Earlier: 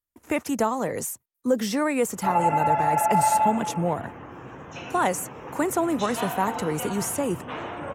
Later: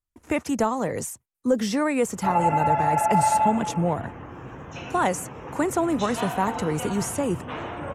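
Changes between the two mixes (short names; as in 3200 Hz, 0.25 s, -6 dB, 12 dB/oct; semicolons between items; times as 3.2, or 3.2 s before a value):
speech: add LPF 10000 Hz 12 dB/oct; master: add low shelf 100 Hz +10.5 dB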